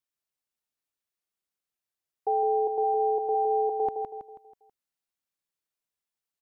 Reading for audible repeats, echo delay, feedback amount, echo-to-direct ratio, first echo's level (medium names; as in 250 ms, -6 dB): 5, 162 ms, 43%, -4.5 dB, -5.5 dB